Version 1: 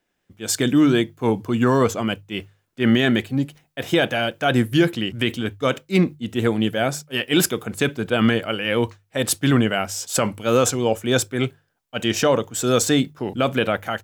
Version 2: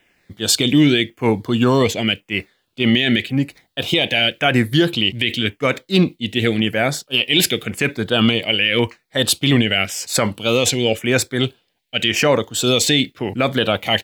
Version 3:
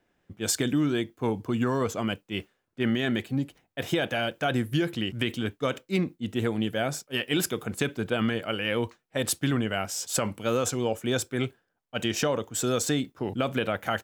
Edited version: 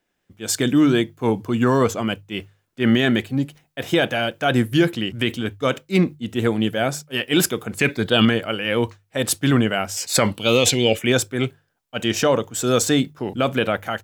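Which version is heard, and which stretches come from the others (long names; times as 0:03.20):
1
0:07.79–0:08.25: punch in from 2
0:09.97–0:11.12: punch in from 2
not used: 3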